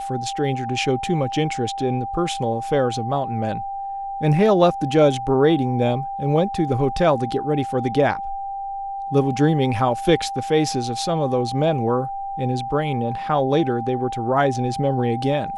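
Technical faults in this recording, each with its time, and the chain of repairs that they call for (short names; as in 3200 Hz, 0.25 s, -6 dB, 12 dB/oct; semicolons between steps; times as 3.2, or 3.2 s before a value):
tone 790 Hz -26 dBFS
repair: notch 790 Hz, Q 30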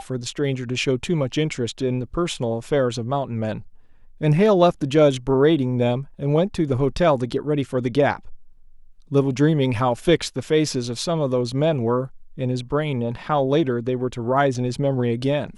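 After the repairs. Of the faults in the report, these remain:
none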